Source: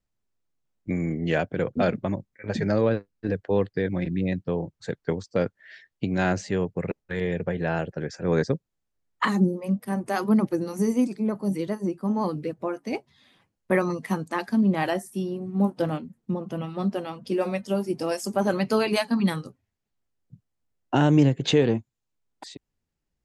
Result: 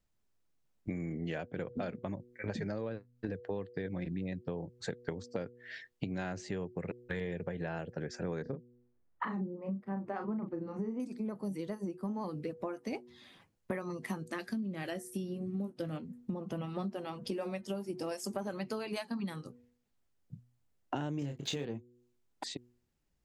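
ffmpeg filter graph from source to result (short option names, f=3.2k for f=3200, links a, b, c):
-filter_complex "[0:a]asettb=1/sr,asplit=3[a][b][c];[a]atrim=end=8.424[d];[b]atrim=start=8.42:end=11,asetpts=PTS-STARTPTS,afade=t=in:d=0.004:c=qsin,afade=t=out:st=2.576:d=0.004:c=qsin,lowpass=1.6k,asplit=2[e][f];[f]adelay=36,volume=-6.5dB[g];[e][g]amix=inputs=2:normalize=0,atrim=end_sample=113778[h];[c]atrim=start=10.996[i];[d][h]acrossfade=d=0.004:c1=hsin:c2=qsin[j];[j][i]acrossfade=d=0.004:c1=qsin:c2=hsin,asettb=1/sr,asplit=3[k][l][m];[k]atrim=end=14.194[n];[l]atrim=start=14.19:end=15.96,asetpts=PTS-STARTPTS,afade=t=in:d=0.004:c=qsin,afade=t=out:st=1.766:d=0.004:c=qsin,equalizer=f=900:t=o:w=0.77:g=-11.5,asplit=2[o][p];[p]adelay=18,volume=-14dB[q];[o][q]amix=inputs=2:normalize=0,atrim=end_sample=78057[r];[m]atrim=start=15.956[s];[n][r]acrossfade=d=0.004:c1=hsin:c2=qsin[t];[t][s]acrossfade=d=0.004:c1=qsin:c2=hsin,asettb=1/sr,asplit=3[u][v][w];[u]atrim=end=21.194[x];[v]atrim=start=21.19:end=21.65,asetpts=PTS-STARTPTS,afade=t=in:d=0.004:c=qsin,afade=t=out:st=0.456:d=0.004:c=qsin,highshelf=f=5.7k:g=11,aeval=exprs='sgn(val(0))*max(abs(val(0))-0.00708,0)':c=same,asplit=2[y][z];[z]adelay=28,volume=-5dB[aa];[y][aa]amix=inputs=2:normalize=0,atrim=end_sample=20286[ab];[w]atrim=start=21.646[ac];[x][ab]acrossfade=d=0.004:c1=hsin:c2=qsin[ad];[ad][ac]acrossfade=d=0.004:c1=qsin:c2=hsin,bandreject=f=121.6:t=h:w=4,bandreject=f=243.2:t=h:w=4,bandreject=f=364.8:t=h:w=4,bandreject=f=486.4:t=h:w=4,acompressor=threshold=-36dB:ratio=10,volume=1.5dB"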